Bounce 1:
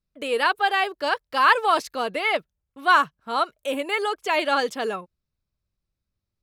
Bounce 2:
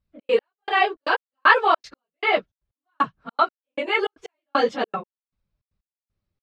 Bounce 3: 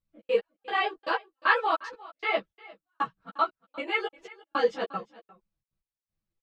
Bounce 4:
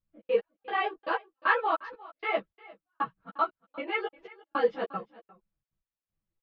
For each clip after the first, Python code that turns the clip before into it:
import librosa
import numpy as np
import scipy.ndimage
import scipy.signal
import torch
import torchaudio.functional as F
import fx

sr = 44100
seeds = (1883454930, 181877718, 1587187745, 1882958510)

y1 = fx.phase_scramble(x, sr, seeds[0], window_ms=50)
y1 = fx.step_gate(y1, sr, bpm=155, pattern='xx.x...x', floor_db=-60.0, edge_ms=4.5)
y1 = fx.air_absorb(y1, sr, metres=160.0)
y1 = y1 * 10.0 ** (4.0 / 20.0)
y2 = y1 + 0.47 * np.pad(y1, (int(6.1 * sr / 1000.0), 0))[:len(y1)]
y2 = y2 + 10.0 ** (-20.5 / 20.0) * np.pad(y2, (int(353 * sr / 1000.0), 0))[:len(y2)]
y2 = fx.ensemble(y2, sr)
y2 = y2 * 10.0 ** (-4.5 / 20.0)
y3 = fx.air_absorb(y2, sr, metres=310.0)